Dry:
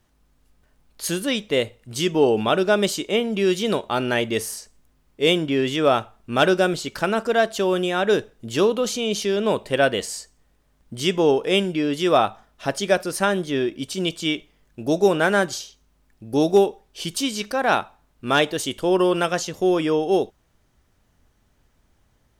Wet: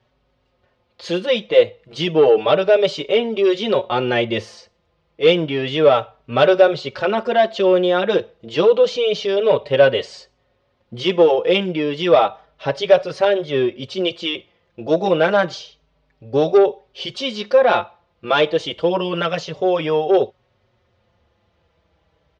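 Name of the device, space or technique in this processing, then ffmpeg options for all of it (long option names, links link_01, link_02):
barber-pole flanger into a guitar amplifier: -filter_complex "[0:a]asplit=2[link_01][link_02];[link_02]adelay=4.9,afreqshift=-0.3[link_03];[link_01][link_03]amix=inputs=2:normalize=1,asoftclip=type=tanh:threshold=-13.5dB,highpass=83,equalizer=frequency=200:width_type=q:width=4:gain=-5,equalizer=frequency=280:width_type=q:width=4:gain=-8,equalizer=frequency=530:width_type=q:width=4:gain=8,equalizer=frequency=1600:width_type=q:width=4:gain=-4,lowpass=frequency=4300:width=0.5412,lowpass=frequency=4300:width=1.3066,volume=7dB"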